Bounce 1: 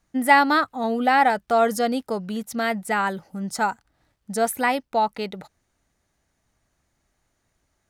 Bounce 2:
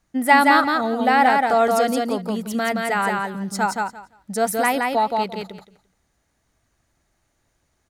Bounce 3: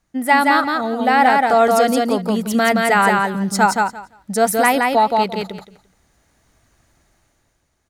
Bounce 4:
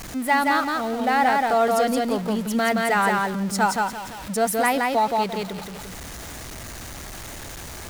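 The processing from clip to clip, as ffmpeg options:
-af "aecho=1:1:172|344|516:0.708|0.12|0.0205,volume=1dB"
-af "dynaudnorm=f=130:g=11:m=9.5dB"
-af "aeval=exprs='val(0)+0.5*0.0668*sgn(val(0))':c=same,volume=-7dB"

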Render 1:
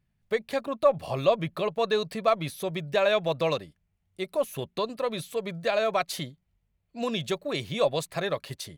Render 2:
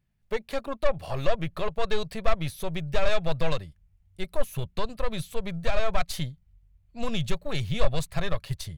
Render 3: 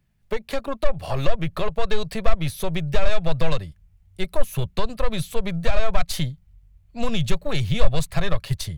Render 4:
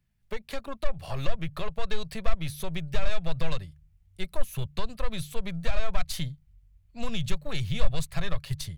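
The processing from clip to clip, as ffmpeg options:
-af "aeval=exprs='(tanh(11.2*val(0)+0.55)-tanh(0.55))/11.2':c=same,asubboost=boost=10.5:cutoff=94,volume=1.5dB"
-filter_complex "[0:a]acrossover=split=140[a][b];[b]acompressor=threshold=-30dB:ratio=6[c];[a][c]amix=inputs=2:normalize=0,volume=7dB"
-af "equalizer=f=480:t=o:w=2.4:g=-5,bandreject=f=73.41:t=h:w=4,bandreject=f=146.82:t=h:w=4,volume=-5.5dB"

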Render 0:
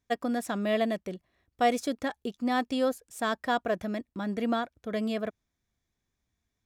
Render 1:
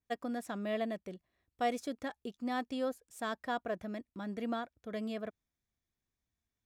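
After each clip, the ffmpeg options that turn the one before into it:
-af "adynamicequalizer=threshold=0.00708:dfrequency=2800:dqfactor=0.7:tfrequency=2800:tqfactor=0.7:attack=5:release=100:ratio=0.375:range=2.5:mode=cutabove:tftype=highshelf,volume=-8dB"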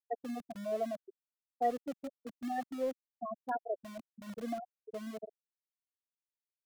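-filter_complex "[0:a]afftfilt=real='re*gte(hypot(re,im),0.0891)':imag='im*gte(hypot(re,im),0.0891)':win_size=1024:overlap=0.75,acrossover=split=210|460|3100[a][b][c][d];[a]aeval=exprs='(mod(335*val(0)+1,2)-1)/335':c=same[e];[e][b][c][d]amix=inputs=4:normalize=0,volume=2dB"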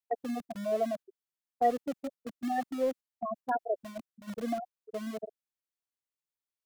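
-af "agate=range=-7dB:threshold=-47dB:ratio=16:detection=peak,volume=5dB"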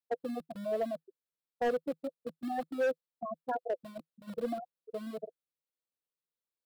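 -af "equalizer=f=160:t=o:w=0.33:g=9,equalizer=f=315:t=o:w=0.33:g=5,equalizer=f=500:t=o:w=0.33:g=12,equalizer=f=1.25k:t=o:w=0.33:g=3,equalizer=f=2k:t=o:w=0.33:g=-4,equalizer=f=4k:t=o:w=0.33:g=4,equalizer=f=6.3k:t=o:w=0.33:g=-10,volume=20.5dB,asoftclip=hard,volume=-20.5dB,volume=-5.5dB"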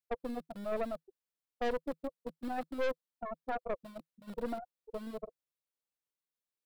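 -af "aeval=exprs='(tanh(35.5*val(0)+0.75)-tanh(0.75))/35.5':c=same,volume=2dB"

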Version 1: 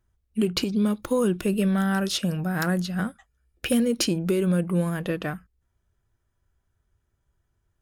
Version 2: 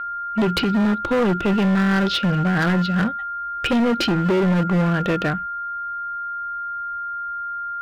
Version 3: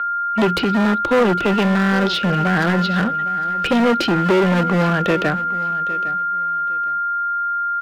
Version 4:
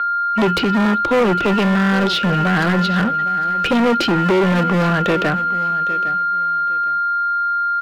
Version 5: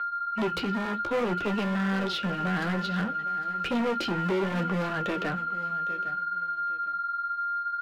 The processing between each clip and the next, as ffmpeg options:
-af "aeval=exprs='val(0)+0.02*sin(2*PI*1400*n/s)':c=same,lowpass=f=3.9k:w=0.5412,lowpass=f=3.9k:w=1.3066,asoftclip=type=hard:threshold=-24dB,volume=8.5dB"
-filter_complex "[0:a]lowshelf=f=260:g=-10,acrossover=split=200|710[a][b][c];[c]alimiter=limit=-19.5dB:level=0:latency=1:release=148[d];[a][b][d]amix=inputs=3:normalize=0,aecho=1:1:808|1616:0.158|0.0349,volume=7dB"
-af "asoftclip=type=tanh:threshold=-12.5dB,volume=3dB"
-af "flanger=delay=8.6:depth=8:regen=-40:speed=0.6:shape=sinusoidal,volume=-8.5dB"

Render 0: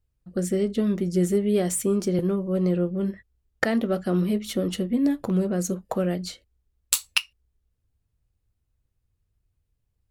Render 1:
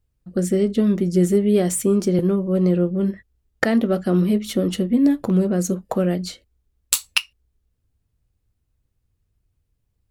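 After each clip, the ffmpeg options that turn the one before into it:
-af "equalizer=f=250:w=0.89:g=3,volume=3dB"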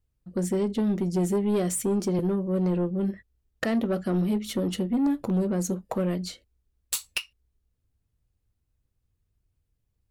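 -af "asoftclip=type=tanh:threshold=-14.5dB,volume=-4.5dB"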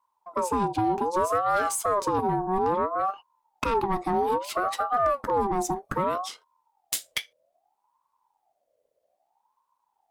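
-af "aeval=exprs='val(0)*sin(2*PI*770*n/s+770*0.3/0.62*sin(2*PI*0.62*n/s))':c=same,volume=3dB"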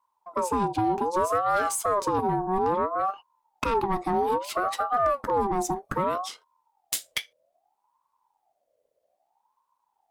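-af anull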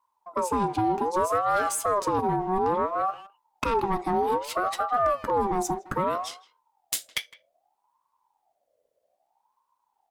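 -filter_complex "[0:a]asplit=2[a][b];[b]adelay=160,highpass=300,lowpass=3.4k,asoftclip=type=hard:threshold=-25.5dB,volume=-17dB[c];[a][c]amix=inputs=2:normalize=0"

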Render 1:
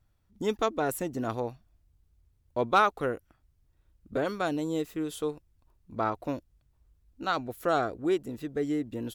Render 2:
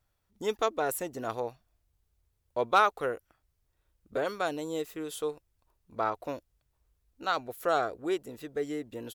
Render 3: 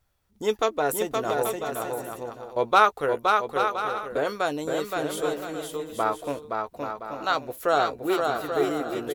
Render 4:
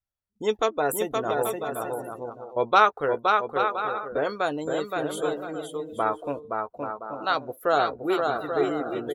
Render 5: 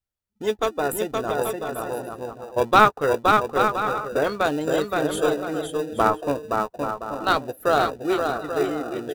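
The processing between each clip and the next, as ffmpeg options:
-af "firequalizer=gain_entry='entry(270,0);entry(440,8);entry(13000,11)':delay=0.05:min_phase=1,volume=-8.5dB"
-filter_complex "[0:a]asplit=2[a][b];[b]adelay=14,volume=-11dB[c];[a][c]amix=inputs=2:normalize=0,aecho=1:1:520|832|1019|1132|1199:0.631|0.398|0.251|0.158|0.1,volume=4.5dB"
-af "afftdn=nr=22:nf=-41"
-filter_complex "[0:a]dynaudnorm=f=330:g=13:m=7dB,asplit=2[a][b];[b]acrusher=samples=41:mix=1:aa=0.000001,volume=-11dB[c];[a][c]amix=inputs=2:normalize=0"

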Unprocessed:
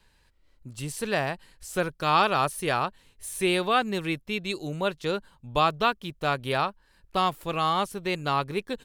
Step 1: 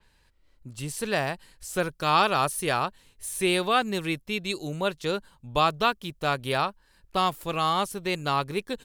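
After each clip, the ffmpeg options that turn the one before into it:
-af "adynamicequalizer=threshold=0.01:dfrequency=4300:dqfactor=0.7:tfrequency=4300:tqfactor=0.7:attack=5:release=100:ratio=0.375:range=2.5:mode=boostabove:tftype=highshelf"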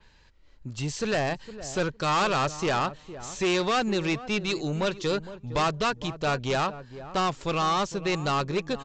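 -filter_complex "[0:a]aresample=16000,asoftclip=type=tanh:threshold=-26.5dB,aresample=44100,asplit=2[a][b];[b]adelay=460,lowpass=f=820:p=1,volume=-12.5dB,asplit=2[c][d];[d]adelay=460,lowpass=f=820:p=1,volume=0.17[e];[a][c][e]amix=inputs=3:normalize=0,volume=5.5dB"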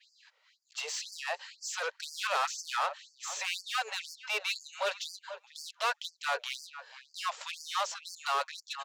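-filter_complex "[0:a]asplit=2[a][b];[b]highpass=f=720:p=1,volume=17dB,asoftclip=type=tanh:threshold=-16.5dB[c];[a][c]amix=inputs=2:normalize=0,lowpass=f=5.5k:p=1,volume=-6dB,afftfilt=real='re*gte(b*sr/1024,410*pow(4500/410,0.5+0.5*sin(2*PI*2*pts/sr)))':imag='im*gte(b*sr/1024,410*pow(4500/410,0.5+0.5*sin(2*PI*2*pts/sr)))':win_size=1024:overlap=0.75,volume=-6.5dB"

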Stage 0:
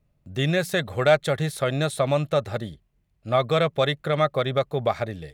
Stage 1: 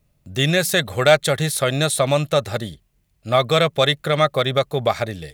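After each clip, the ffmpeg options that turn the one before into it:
-af "highshelf=f=3.3k:g=11,volume=3.5dB"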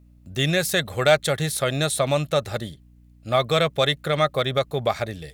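-af "aeval=exprs='val(0)+0.00447*(sin(2*PI*60*n/s)+sin(2*PI*2*60*n/s)/2+sin(2*PI*3*60*n/s)/3+sin(2*PI*4*60*n/s)/4+sin(2*PI*5*60*n/s)/5)':c=same,volume=-3.5dB"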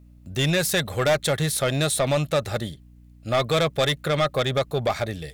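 -af "asoftclip=type=tanh:threshold=-18dB,volume=2.5dB"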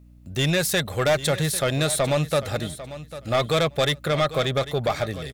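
-af "aecho=1:1:797|1594:0.188|0.032"

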